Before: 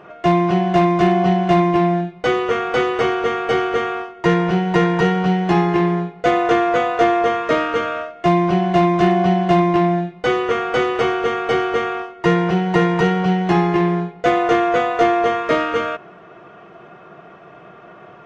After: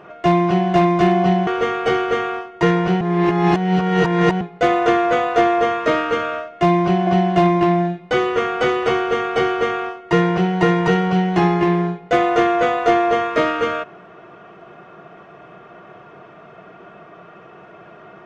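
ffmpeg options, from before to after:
-filter_complex "[0:a]asplit=5[a][b][c][d][e];[a]atrim=end=1.472[f];[b]atrim=start=3.098:end=4.642[g];[c]atrim=start=4.638:end=6.042,asetpts=PTS-STARTPTS,areverse[h];[d]atrim=start=6.038:end=8.702[i];[e]atrim=start=9.198[j];[f][g]acrossfade=d=0.004:c1=hsin:c2=hsin[k];[k][h]acrossfade=d=0.004:c1=hsin:c2=hsin[l];[l][i]acrossfade=d=0.004:c1=hsin:c2=hsin[m];[m][j]acrossfade=d=0.004:c1=hsin:c2=hsin"

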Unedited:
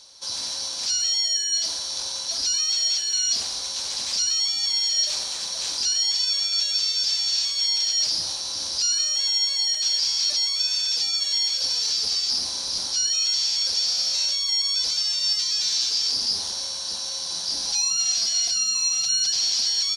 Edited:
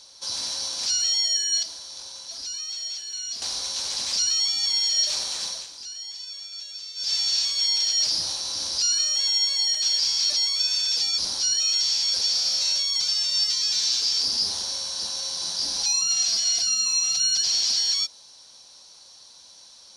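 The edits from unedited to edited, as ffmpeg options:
-filter_complex "[0:a]asplit=7[a][b][c][d][e][f][g];[a]atrim=end=1.632[h];[b]atrim=start=1.628:end=3.422,asetpts=PTS-STARTPTS,volume=-9.5dB[i];[c]atrim=start=3.418:end=5.67,asetpts=PTS-STARTPTS,afade=t=out:st=2.052:d=0.2:silence=0.199526[j];[d]atrim=start=5.67:end=6.95,asetpts=PTS-STARTPTS,volume=-14dB[k];[e]atrim=start=6.95:end=11.182,asetpts=PTS-STARTPTS,afade=t=in:d=0.2:silence=0.199526[l];[f]atrim=start=12.708:end=14.532[m];[g]atrim=start=14.888[n];[h][i]acrossfade=d=0.004:c1=hsin:c2=hsin[o];[j][k][l]concat=n=3:v=0:a=1[p];[o][p]acrossfade=d=0.004:c1=hsin:c2=hsin[q];[q][m]acrossfade=d=0.004:c1=hsin:c2=hsin[r];[r][n]acrossfade=d=0.004:c1=hsin:c2=hsin"

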